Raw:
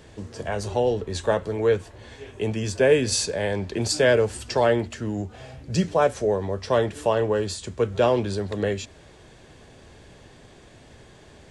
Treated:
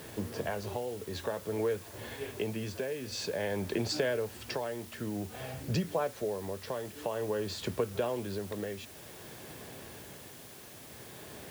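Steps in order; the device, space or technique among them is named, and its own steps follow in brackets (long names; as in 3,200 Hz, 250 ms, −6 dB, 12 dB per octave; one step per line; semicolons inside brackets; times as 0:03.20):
medium wave at night (band-pass filter 110–4,100 Hz; downward compressor, threshold −31 dBFS, peak gain reduction 17 dB; amplitude tremolo 0.52 Hz, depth 51%; steady tone 10,000 Hz −66 dBFS; white noise bed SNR 16 dB)
level +2.5 dB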